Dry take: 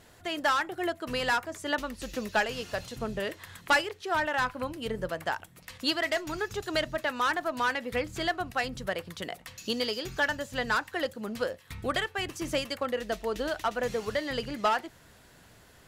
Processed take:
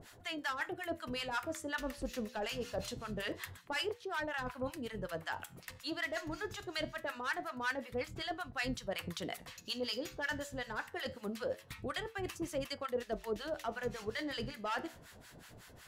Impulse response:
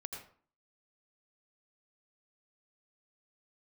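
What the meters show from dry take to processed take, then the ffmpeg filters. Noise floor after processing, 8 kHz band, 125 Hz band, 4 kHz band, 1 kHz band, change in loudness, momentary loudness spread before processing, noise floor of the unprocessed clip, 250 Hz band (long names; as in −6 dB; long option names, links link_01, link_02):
−58 dBFS, −6.5 dB, −5.5 dB, −8.0 dB, −11.0 dB, −9.0 dB, 8 LU, −57 dBFS, −6.5 dB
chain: -filter_complex "[0:a]areverse,acompressor=threshold=-36dB:ratio=5,areverse,acrossover=split=900[link_01][link_02];[link_01]aeval=exprs='val(0)*(1-1/2+1/2*cos(2*PI*5.4*n/s))':channel_layout=same[link_03];[link_02]aeval=exprs='val(0)*(1-1/2-1/2*cos(2*PI*5.4*n/s))':channel_layout=same[link_04];[link_03][link_04]amix=inputs=2:normalize=0,flanger=delay=7.1:depth=7.8:regen=-80:speed=0.24:shape=sinusoidal,volume=9dB"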